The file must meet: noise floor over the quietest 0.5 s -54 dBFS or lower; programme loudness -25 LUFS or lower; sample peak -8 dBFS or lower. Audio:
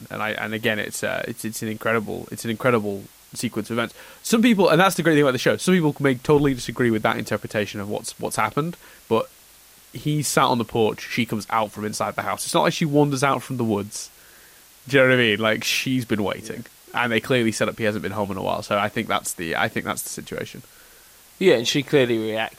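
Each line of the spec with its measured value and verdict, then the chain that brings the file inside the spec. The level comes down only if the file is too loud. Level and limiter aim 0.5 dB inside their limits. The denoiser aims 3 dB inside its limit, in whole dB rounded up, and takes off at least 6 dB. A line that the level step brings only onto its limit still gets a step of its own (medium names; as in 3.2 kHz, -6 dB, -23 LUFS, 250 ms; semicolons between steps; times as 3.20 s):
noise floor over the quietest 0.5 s -50 dBFS: fail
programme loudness -22.0 LUFS: fail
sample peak -5.0 dBFS: fail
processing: noise reduction 6 dB, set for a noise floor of -50 dBFS; trim -3.5 dB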